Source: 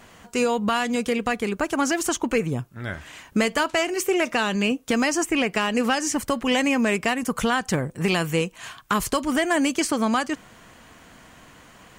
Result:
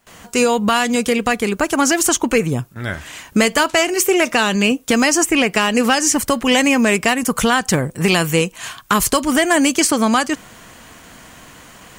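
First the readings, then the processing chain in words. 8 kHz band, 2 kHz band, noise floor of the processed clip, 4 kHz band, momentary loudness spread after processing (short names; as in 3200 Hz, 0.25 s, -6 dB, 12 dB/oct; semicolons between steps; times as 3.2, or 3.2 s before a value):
+11.5 dB, +7.5 dB, -44 dBFS, +8.5 dB, 9 LU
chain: gate with hold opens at -39 dBFS; high shelf 5100 Hz +7 dB; requantised 12-bit, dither none; gain +6.5 dB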